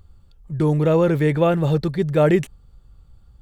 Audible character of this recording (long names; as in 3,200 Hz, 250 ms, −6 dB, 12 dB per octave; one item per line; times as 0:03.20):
background noise floor −52 dBFS
spectral slope −7.0 dB per octave